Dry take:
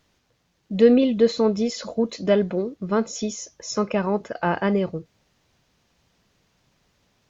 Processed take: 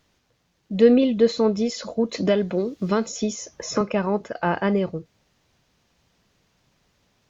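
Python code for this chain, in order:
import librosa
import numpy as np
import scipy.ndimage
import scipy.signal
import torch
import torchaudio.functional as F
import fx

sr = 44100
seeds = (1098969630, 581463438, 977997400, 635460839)

y = fx.band_squash(x, sr, depth_pct=70, at=(2.14, 3.81))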